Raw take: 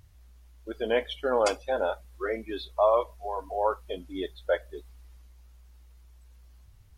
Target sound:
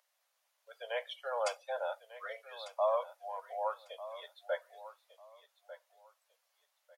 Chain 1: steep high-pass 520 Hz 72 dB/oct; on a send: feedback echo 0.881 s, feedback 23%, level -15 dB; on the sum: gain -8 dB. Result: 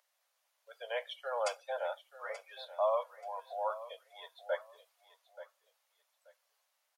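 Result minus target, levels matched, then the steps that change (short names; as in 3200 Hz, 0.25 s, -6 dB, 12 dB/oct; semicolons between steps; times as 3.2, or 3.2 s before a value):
echo 0.316 s early
change: feedback echo 1.197 s, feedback 23%, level -15 dB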